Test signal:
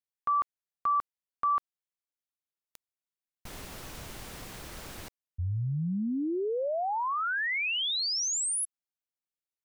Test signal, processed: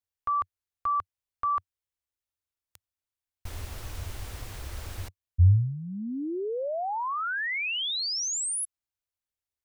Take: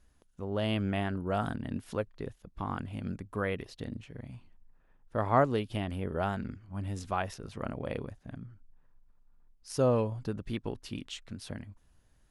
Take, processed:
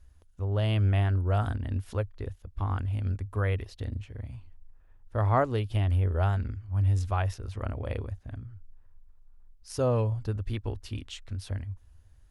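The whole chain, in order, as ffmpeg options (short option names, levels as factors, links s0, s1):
-af "lowshelf=f=120:t=q:w=3:g=8.5"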